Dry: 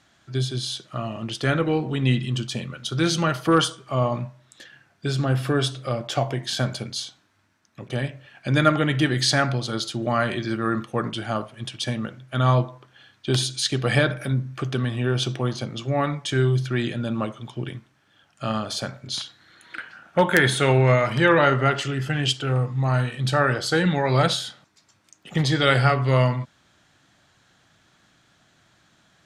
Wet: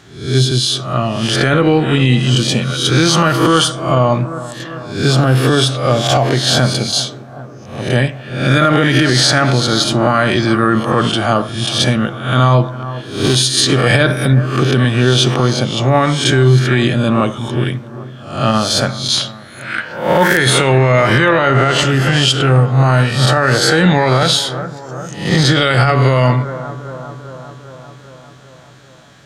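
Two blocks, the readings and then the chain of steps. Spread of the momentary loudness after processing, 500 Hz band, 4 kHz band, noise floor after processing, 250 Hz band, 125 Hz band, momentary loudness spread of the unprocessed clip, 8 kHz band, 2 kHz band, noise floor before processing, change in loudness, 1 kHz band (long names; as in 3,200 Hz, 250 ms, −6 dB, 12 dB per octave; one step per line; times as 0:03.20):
14 LU, +9.5 dB, +12.5 dB, −36 dBFS, +10.5 dB, +10.5 dB, 13 LU, +13.0 dB, +9.5 dB, −63 dBFS, +10.0 dB, +10.0 dB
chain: peak hold with a rise ahead of every peak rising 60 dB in 0.55 s
on a send: bucket-brigade delay 397 ms, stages 4,096, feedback 66%, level −18 dB
on the sum: boost into a limiter +13 dB
level −1 dB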